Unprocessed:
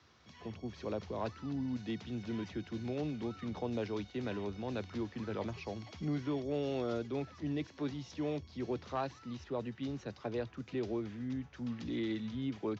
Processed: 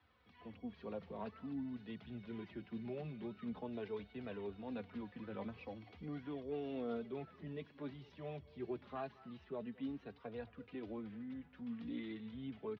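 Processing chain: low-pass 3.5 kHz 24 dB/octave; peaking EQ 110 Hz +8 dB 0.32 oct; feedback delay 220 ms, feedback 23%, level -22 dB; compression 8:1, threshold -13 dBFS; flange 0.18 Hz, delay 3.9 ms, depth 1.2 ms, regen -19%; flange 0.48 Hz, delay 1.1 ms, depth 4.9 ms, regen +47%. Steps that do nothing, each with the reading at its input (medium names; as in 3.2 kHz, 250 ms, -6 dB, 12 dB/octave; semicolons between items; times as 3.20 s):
compression, threshold -13 dBFS: peak at its input -23.5 dBFS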